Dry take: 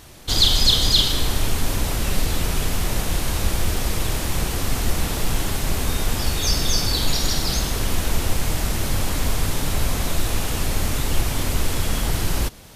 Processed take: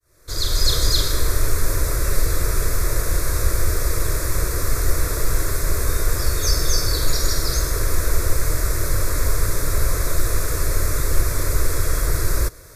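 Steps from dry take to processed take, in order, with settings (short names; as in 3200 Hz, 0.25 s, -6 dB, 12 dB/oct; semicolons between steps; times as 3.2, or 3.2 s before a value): opening faded in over 0.72 s; fixed phaser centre 810 Hz, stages 6; gain +3.5 dB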